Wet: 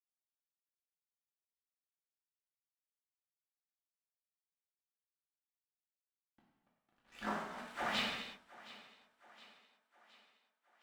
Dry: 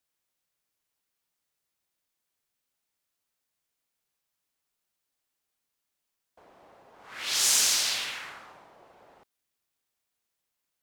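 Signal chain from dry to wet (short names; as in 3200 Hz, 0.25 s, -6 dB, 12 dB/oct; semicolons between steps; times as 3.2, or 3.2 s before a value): Wiener smoothing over 41 samples; reverb removal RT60 1.7 s; spectral gate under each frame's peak -10 dB weak; thirty-one-band EQ 100 Hz -10 dB, 200 Hz +10 dB, 1000 Hz -6 dB, 8000 Hz +10 dB; LFO low-pass sine 3.8 Hz 990–3200 Hz; small resonant body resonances 240/3600 Hz, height 10 dB, ringing for 70 ms; negative-ratio compressor -45 dBFS, ratio -0.5; crossover distortion -57.5 dBFS; thinning echo 0.717 s, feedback 54%, high-pass 200 Hz, level -18.5 dB; non-linear reverb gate 0.37 s falling, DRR -4 dB; gain +1 dB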